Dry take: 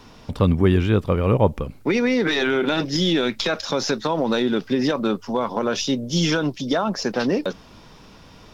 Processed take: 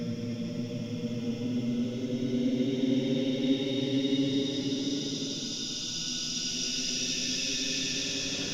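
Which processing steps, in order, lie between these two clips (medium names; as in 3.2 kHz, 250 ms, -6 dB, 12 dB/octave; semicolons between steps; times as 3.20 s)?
reverse the whole clip; compression, threshold -20 dBFS, peak gain reduction 9 dB; echo whose repeats swap between lows and highs 136 ms, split 1 kHz, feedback 68%, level -13 dB; Paulstretch 32×, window 0.10 s, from 2.50 s; trim -5.5 dB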